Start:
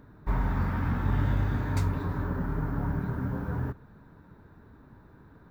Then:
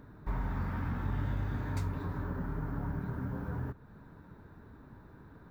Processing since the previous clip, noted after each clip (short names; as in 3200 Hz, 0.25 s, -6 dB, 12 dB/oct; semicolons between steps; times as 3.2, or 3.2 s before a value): compressor 1.5:1, threshold -43 dBFS, peak gain reduction 8 dB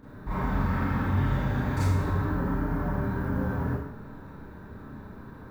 Schroeder reverb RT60 0.8 s, combs from 29 ms, DRR -10 dB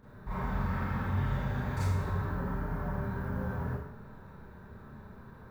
bell 290 Hz -13.5 dB 0.24 oct; gain -5 dB